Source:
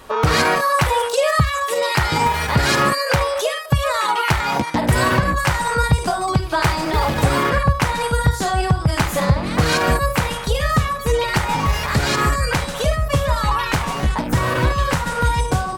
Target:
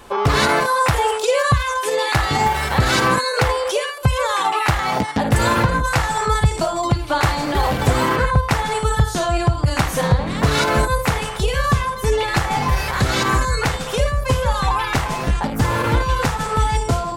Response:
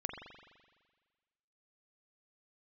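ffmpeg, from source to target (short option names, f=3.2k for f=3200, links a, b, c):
-af "asetrate=40517,aresample=44100"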